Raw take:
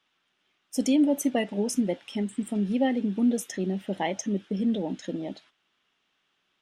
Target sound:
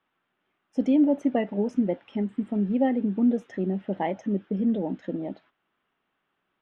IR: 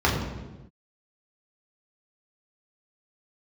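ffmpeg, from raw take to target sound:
-af "lowpass=1.6k,volume=1.5dB"

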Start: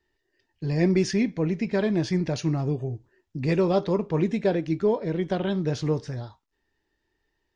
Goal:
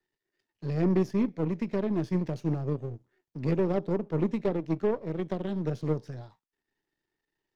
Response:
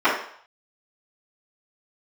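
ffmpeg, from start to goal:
-filter_complex "[0:a]aeval=exprs='if(lt(val(0),0),0.251*val(0),val(0))':c=same,acrossover=split=140|660[a][b][c];[c]acompressor=threshold=-47dB:ratio=6[d];[a][b][d]amix=inputs=3:normalize=0,aeval=exprs='0.168*(cos(1*acos(clip(val(0)/0.168,-1,1)))-cos(1*PI/2))+0.0106*(cos(7*acos(clip(val(0)/0.168,-1,1)))-cos(7*PI/2))':c=same,lowshelf=f=100:t=q:w=1.5:g=-8"

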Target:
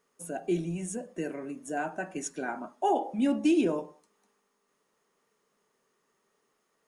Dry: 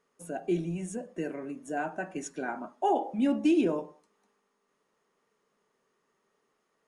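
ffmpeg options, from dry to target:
-af "highshelf=f=5.8k:g=8"

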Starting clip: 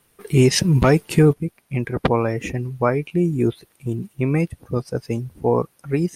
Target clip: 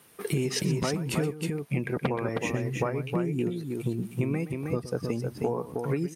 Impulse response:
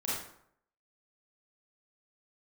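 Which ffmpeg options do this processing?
-filter_complex "[0:a]highpass=130,acompressor=threshold=-30dB:ratio=12,asplit=2[a][b];[b]aecho=0:1:122|316:0.188|0.596[c];[a][c]amix=inputs=2:normalize=0,volume=4.5dB"

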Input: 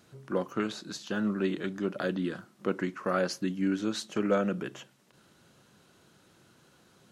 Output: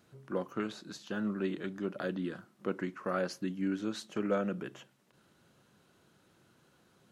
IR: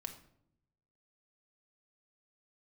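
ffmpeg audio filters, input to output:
-af "equalizer=f=6.1k:t=o:w=1.8:g=-3.5,volume=-4.5dB"

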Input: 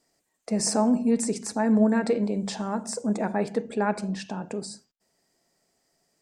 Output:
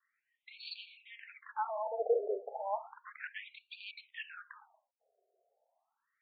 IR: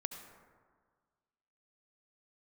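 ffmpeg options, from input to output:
-af "asoftclip=type=hard:threshold=-23dB,afftfilt=real='re*between(b*sr/1024,530*pow(3300/530,0.5+0.5*sin(2*PI*0.33*pts/sr))/1.41,530*pow(3300/530,0.5+0.5*sin(2*PI*0.33*pts/sr))*1.41)':imag='im*between(b*sr/1024,530*pow(3300/530,0.5+0.5*sin(2*PI*0.33*pts/sr))/1.41,530*pow(3300/530,0.5+0.5*sin(2*PI*0.33*pts/sr))*1.41)':win_size=1024:overlap=0.75"

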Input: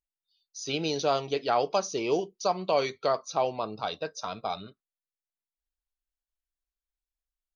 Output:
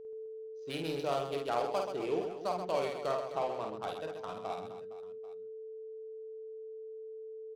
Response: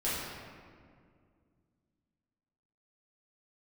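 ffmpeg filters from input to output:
-af "adynamicsmooth=sensitivity=4.5:basefreq=870,aeval=exprs='val(0)+0.0141*sin(2*PI*440*n/s)':c=same,aecho=1:1:50|130|258|462.8|790.5:0.631|0.398|0.251|0.158|0.1,volume=-8.5dB"

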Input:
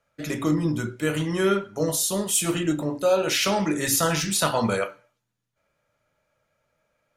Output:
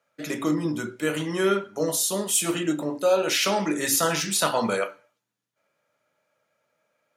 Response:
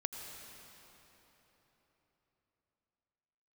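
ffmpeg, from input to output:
-af "highpass=210"

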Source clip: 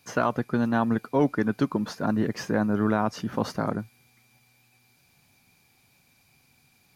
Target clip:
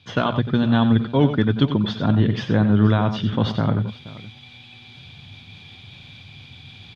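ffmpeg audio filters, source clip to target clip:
-af "equalizer=f=100:w=1.2:g=13.5,areverse,acompressor=mode=upward:threshold=-35dB:ratio=2.5,areverse,lowpass=f=3.4k:t=q:w=12,lowshelf=f=380:g=4,bandreject=f=60:t=h:w=6,bandreject=f=120:t=h:w=6,aecho=1:1:91|96|475:0.299|0.133|0.126"

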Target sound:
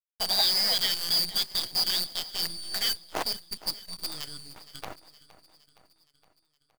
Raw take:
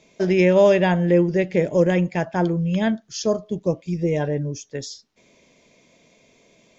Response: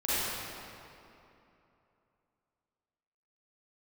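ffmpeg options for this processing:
-af "afftfilt=real='real(if(lt(b,272),68*(eq(floor(b/68),0)*3+eq(floor(b/68),1)*2+eq(floor(b/68),2)*1+eq(floor(b/68),3)*0)+mod(b,68),b),0)':imag='imag(if(lt(b,272),68*(eq(floor(b/68),0)*3+eq(floor(b/68),1)*2+eq(floor(b/68),2)*1+eq(floor(b/68),3)*0)+mod(b,68),b),0)':win_size=2048:overlap=0.75,aemphasis=mode=reproduction:type=50fm,aecho=1:1:6.3:0.33,aeval=exprs='sgn(val(0))*max(abs(val(0))-0.0133,0)':c=same,highpass=280,equalizer=f=710:t=q:w=4:g=8,equalizer=f=1.7k:t=q:w=4:g=-5,equalizer=f=2.6k:t=q:w=4:g=-6,lowpass=f=3.7k:w=0.5412,lowpass=f=3.7k:w=1.3066,acrusher=bits=6:dc=4:mix=0:aa=0.000001,aecho=1:1:466|932|1398|1864|2330:0.126|0.0743|0.0438|0.0259|0.0153,volume=4.5dB"

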